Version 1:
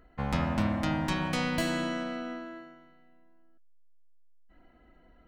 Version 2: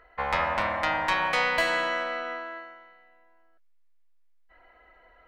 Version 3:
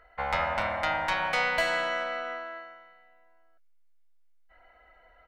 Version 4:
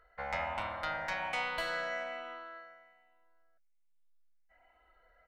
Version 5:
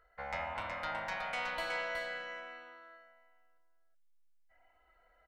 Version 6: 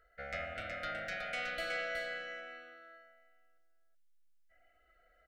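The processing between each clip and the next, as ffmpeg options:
-af "equalizer=f=125:t=o:w=1:g=-10,equalizer=f=250:t=o:w=1:g=-11,equalizer=f=500:t=o:w=1:g=9,equalizer=f=1k:t=o:w=1:g=10,equalizer=f=2k:t=o:w=1:g=12,equalizer=f=4k:t=o:w=1:g=5,volume=-3.5dB"
-af "aecho=1:1:1.4:0.37,volume=-2.5dB"
-af "afftfilt=real='re*pow(10,6/40*sin(2*PI*(0.61*log(max(b,1)*sr/1024/100)/log(2)-(1.2)*(pts-256)/sr)))':imag='im*pow(10,6/40*sin(2*PI*(0.61*log(max(b,1)*sr/1024/100)/log(2)-(1.2)*(pts-256)/sr)))':win_size=1024:overlap=0.75,volume=-8.5dB"
-af "aecho=1:1:370:0.596,volume=-3dB"
-af "asuperstop=centerf=960:order=12:qfactor=1.9"

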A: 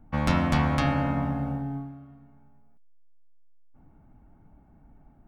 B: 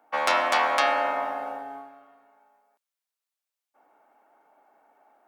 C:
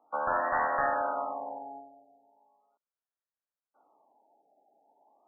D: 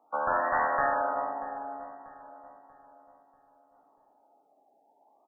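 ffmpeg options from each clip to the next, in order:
-af "highpass=f=510:w=0.5412,highpass=f=510:w=1.3066,volume=7dB"
-af "aeval=exprs='clip(val(0),-1,0.126)':c=same,afftfilt=real='re*lt(b*sr/1024,830*pow(2000/830,0.5+0.5*sin(2*PI*0.38*pts/sr)))':imag='im*lt(b*sr/1024,830*pow(2000/830,0.5+0.5*sin(2*PI*0.38*pts/sr)))':win_size=1024:overlap=0.75,volume=-4.5dB"
-filter_complex "[0:a]asplit=2[a][b];[b]adelay=638,lowpass=f=1.4k:p=1,volume=-14dB,asplit=2[c][d];[d]adelay=638,lowpass=f=1.4k:p=1,volume=0.5,asplit=2[e][f];[f]adelay=638,lowpass=f=1.4k:p=1,volume=0.5,asplit=2[g][h];[h]adelay=638,lowpass=f=1.4k:p=1,volume=0.5,asplit=2[i][j];[j]adelay=638,lowpass=f=1.4k:p=1,volume=0.5[k];[a][c][e][g][i][k]amix=inputs=6:normalize=0,volume=1.5dB"

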